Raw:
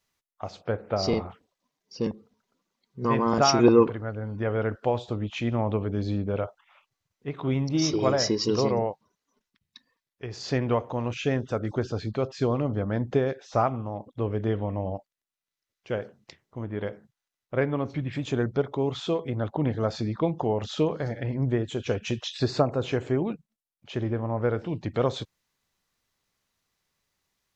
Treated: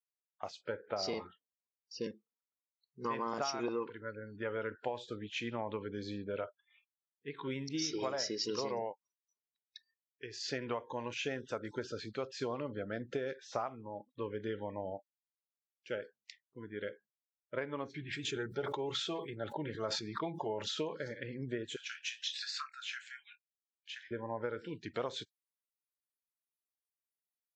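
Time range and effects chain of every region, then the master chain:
0:17.92–0:20.75: notch comb filter 250 Hz + level that may fall only so fast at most 59 dB per second
0:21.76–0:24.11: inverse Chebyshev high-pass filter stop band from 650 Hz + double-tracking delay 27 ms −11 dB
whole clip: high-pass filter 690 Hz 6 dB per octave; noise reduction from a noise print of the clip's start 26 dB; downward compressor 12 to 1, threshold −29 dBFS; level −3 dB

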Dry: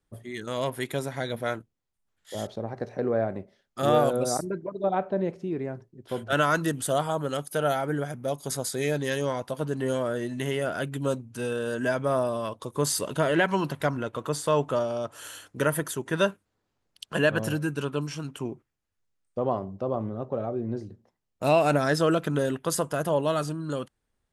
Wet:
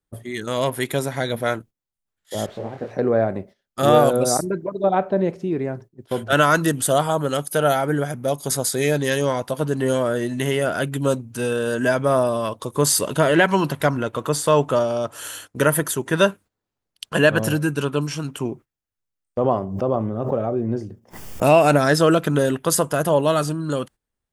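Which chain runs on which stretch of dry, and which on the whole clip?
0:02.46–0:02.91: spike at every zero crossing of −24.5 dBFS + low-pass filter 1,600 Hz + micro pitch shift up and down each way 57 cents
0:19.41–0:21.68: notch filter 4,000 Hz, Q 5.6 + background raised ahead of every attack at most 72 dB per second
whole clip: noise gate −47 dBFS, range −13 dB; high-shelf EQ 11,000 Hz +7 dB; level +7 dB

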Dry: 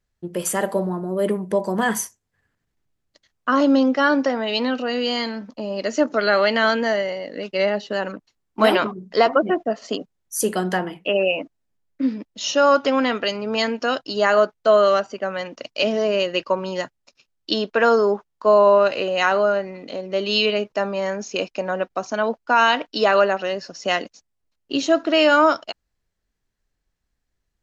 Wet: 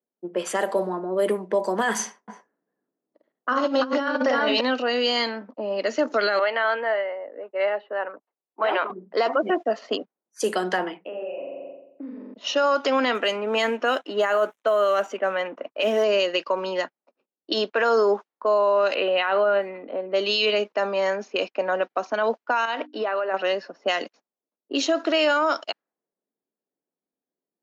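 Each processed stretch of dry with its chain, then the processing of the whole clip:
0:01.94–0:04.61: multi-tap delay 50/117/337/352 ms −4/−13/−4.5/−12.5 dB + compressor whose output falls as the input rises −18 dBFS, ratio −0.5 + high-frequency loss of the air 56 metres
0:06.39–0:08.90: high-pass filter 560 Hz + high-frequency loss of the air 490 metres
0:11.06–0:12.34: flutter between parallel walls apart 7.5 metres, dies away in 0.92 s + downward compressor 4 to 1, threshold −32 dBFS
0:13.15–0:16.04: mu-law and A-law mismatch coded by mu + parametric band 4,700 Hz −15 dB 0.39 octaves
0:18.94–0:20.09: Butterworth low-pass 3,700 Hz + bit-depth reduction 12 bits, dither none
0:22.65–0:23.34: high-shelf EQ 3,400 Hz −9 dB + mains-hum notches 50/100/150/200/250/300 Hz + downward compressor 16 to 1, threshold −22 dBFS
whole clip: low-pass that shuts in the quiet parts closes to 500 Hz, open at −17 dBFS; Bessel high-pass filter 360 Hz, order 8; brickwall limiter −15.5 dBFS; level +2.5 dB

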